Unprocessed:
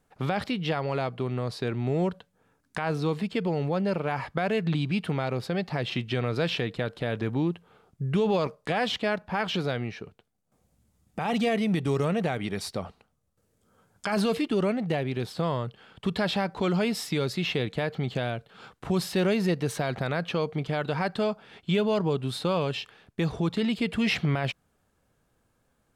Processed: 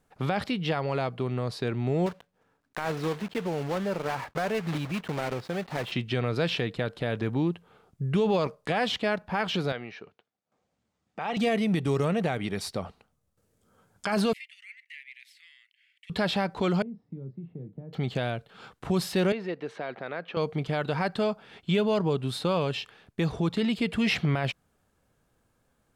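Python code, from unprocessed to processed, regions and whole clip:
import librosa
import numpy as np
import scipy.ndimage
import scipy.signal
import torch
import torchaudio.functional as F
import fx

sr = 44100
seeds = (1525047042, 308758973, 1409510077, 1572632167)

y = fx.chain(x, sr, fx.block_float(bits=3),
    fx.lowpass(hz=2000.0, slope=6),
    fx.low_shelf(hz=290.0, db=-6.5), at=(2.06, 5.92))
y = fx.chain(y, sr, fx.highpass(hz=540.0, slope=6),
    fx.air_absorb(metres=120.0), at=(9.72, 11.37))
y = fx.chain(y, sr, fx.cheby1_highpass(hz=2000.0, order=6),
    fx.high_shelf_res(hz=2600.0, db=-12.0, q=1.5), at=(14.33, 16.1))
y = fx.chain(y, sr, fx.ladder_bandpass(hz=170.0, resonance_pct=30),
    fx.doubler(ms=30.0, db=-9.5),
    fx.band_squash(depth_pct=70), at=(16.82, 17.93))
y = fx.chain(y, sr, fx.bandpass_edges(low_hz=380.0, high_hz=2200.0),
    fx.peak_eq(hz=950.0, db=-5.5, octaves=2.1), at=(19.32, 20.37))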